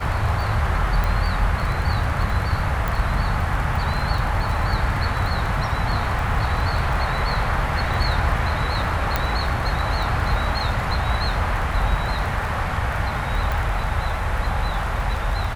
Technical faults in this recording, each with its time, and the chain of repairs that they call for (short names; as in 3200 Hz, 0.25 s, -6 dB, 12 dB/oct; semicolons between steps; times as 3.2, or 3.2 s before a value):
crackle 29/s -27 dBFS
1.04 pop
2.88 pop
9.16 pop -6 dBFS
13.52 pop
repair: de-click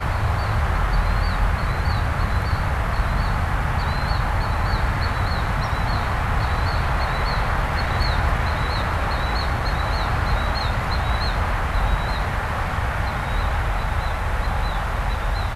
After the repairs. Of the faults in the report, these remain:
2.88 pop